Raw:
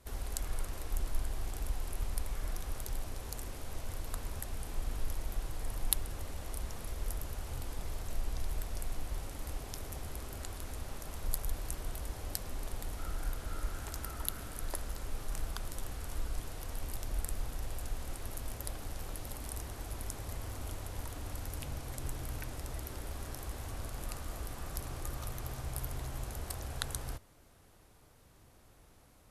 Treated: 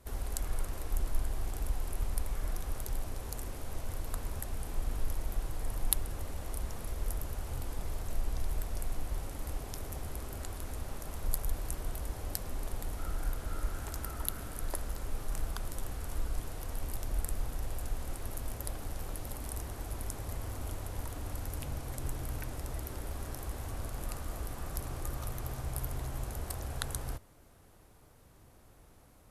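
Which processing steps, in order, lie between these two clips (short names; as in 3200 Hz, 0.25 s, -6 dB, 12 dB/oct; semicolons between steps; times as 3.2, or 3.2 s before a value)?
bell 4000 Hz -4 dB 2.5 oct; gain +2.5 dB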